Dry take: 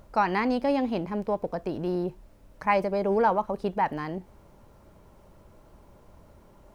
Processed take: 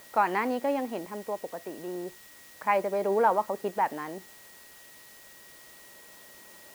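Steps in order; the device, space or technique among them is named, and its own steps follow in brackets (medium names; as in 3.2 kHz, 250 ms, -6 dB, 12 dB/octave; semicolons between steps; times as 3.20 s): shortwave radio (band-pass 300–2900 Hz; tremolo 0.3 Hz, depth 49%; whistle 1.9 kHz -56 dBFS; white noise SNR 21 dB)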